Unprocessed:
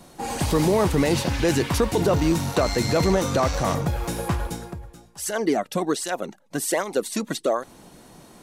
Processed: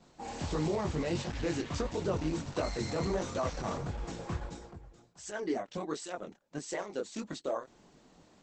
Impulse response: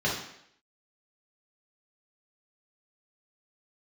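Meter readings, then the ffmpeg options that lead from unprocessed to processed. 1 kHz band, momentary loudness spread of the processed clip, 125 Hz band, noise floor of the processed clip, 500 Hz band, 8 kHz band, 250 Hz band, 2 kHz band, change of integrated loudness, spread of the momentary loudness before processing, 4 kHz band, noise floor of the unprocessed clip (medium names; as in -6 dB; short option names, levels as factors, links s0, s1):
-12.5 dB, 11 LU, -12.5 dB, -63 dBFS, -12.0 dB, -15.5 dB, -12.0 dB, -13.0 dB, -12.5 dB, 11 LU, -13.5 dB, -51 dBFS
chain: -af "flanger=delay=19:depth=7.3:speed=1.5,volume=0.376" -ar 48000 -c:a libopus -b:a 12k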